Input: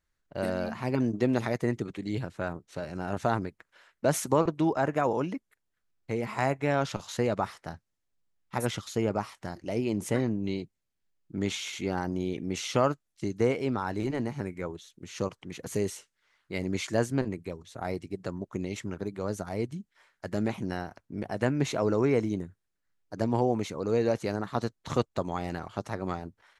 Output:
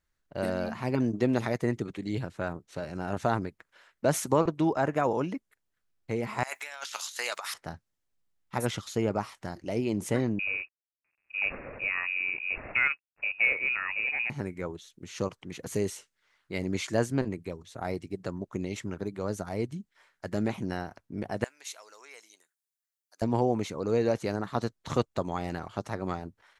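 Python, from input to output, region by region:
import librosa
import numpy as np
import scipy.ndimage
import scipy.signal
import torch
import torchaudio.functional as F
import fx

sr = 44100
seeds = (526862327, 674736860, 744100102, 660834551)

y = fx.chain(x, sr, fx.highpass(hz=940.0, slope=12),
    fx.tilt_eq(slope=4.5),
    fx.over_compress(threshold_db=-36.0, ratio=-0.5), at=(6.43, 7.54))
y = fx.chain(y, sr, fx.cvsd(bps=32000),
    fx.highpass(hz=53.0, slope=12),
    fx.freq_invert(carrier_hz=2700), at=(10.39, 14.3))
y = fx.chain(y, sr, fx.highpass(hz=620.0, slope=12),
    fx.differentiator(),
    fx.transformer_sat(knee_hz=2000.0), at=(21.44, 23.22))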